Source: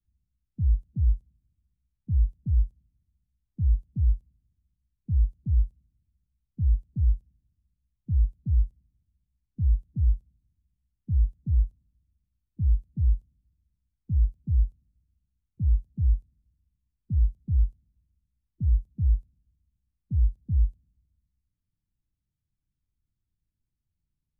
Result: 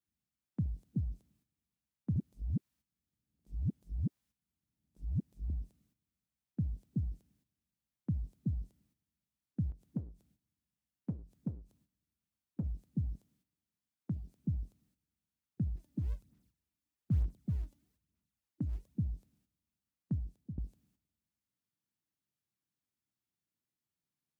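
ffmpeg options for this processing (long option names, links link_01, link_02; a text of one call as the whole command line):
ffmpeg -i in.wav -filter_complex "[0:a]asplit=3[link_01][link_02][link_03];[link_01]afade=type=out:start_time=9.7:duration=0.02[link_04];[link_02]acompressor=threshold=-31dB:ratio=6:attack=3.2:release=140:knee=1:detection=peak,afade=type=in:start_time=9.7:duration=0.02,afade=type=out:start_time=12.63:duration=0.02[link_05];[link_03]afade=type=in:start_time=12.63:duration=0.02[link_06];[link_04][link_05][link_06]amix=inputs=3:normalize=0,asettb=1/sr,asplit=3[link_07][link_08][link_09];[link_07]atrim=end=13.154[link_10];[link_08]atrim=start=13.15:end=14.4,asetpts=PTS-STARTPTS,afade=type=in:duration=0.004:curve=qsin,afade=type=out:start_time=1.246:duration=0.004:curve=qsin,highpass=frequency=120:poles=1[link_11];[link_09]atrim=start=14.396[link_12];[link_10][link_11]acrossfade=duration=0.004:curve1=hsin:curve2=qsin[link_13];[link_13][link_12]acrossfade=duration=0.004:curve1=qsin:curve2=hsin,asplit=3[link_14][link_15][link_16];[link_14]afade=type=out:start_time=15.76:duration=0.02[link_17];[link_15]aphaser=in_gain=1:out_gain=1:delay=3.5:decay=0.54:speed=1.1:type=sinusoidal,afade=type=in:start_time=15.76:duration=0.02,afade=type=out:start_time=18.93:duration=0.02[link_18];[link_16]afade=type=in:start_time=18.93:duration=0.02[link_19];[link_17][link_18][link_19]amix=inputs=3:normalize=0,asplit=4[link_20][link_21][link_22][link_23];[link_20]atrim=end=2.162[link_24];[link_21]atrim=start=2.158:end=5.502,asetpts=PTS-STARTPTS,areverse[link_25];[link_22]atrim=start=5.498:end=20.58,asetpts=PTS-STARTPTS,afade=type=out:start_time=14.632:duration=0.45:silence=0.199526[link_26];[link_23]atrim=start=20.58,asetpts=PTS-STARTPTS,afade=type=in:duration=0.004:curve=hsin:silence=0.199526[link_27];[link_24][link_25]acrossfade=duration=0.004:curve1=hsin:curve2=hsin[link_28];[link_26][link_27]concat=n=2:v=0:a=1[link_29];[link_28][link_29]acrossfade=duration=0.004:curve1=hsin:curve2=hsin,agate=range=-10dB:threshold=-58dB:ratio=16:detection=peak,highpass=280,volume=10dB" out.wav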